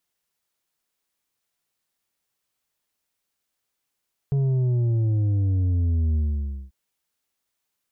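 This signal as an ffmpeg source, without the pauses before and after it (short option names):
-f lavfi -i "aevalsrc='0.106*clip((2.39-t)/0.55,0,1)*tanh(2*sin(2*PI*140*2.39/log(65/140)*(exp(log(65/140)*t/2.39)-1)))/tanh(2)':d=2.39:s=44100"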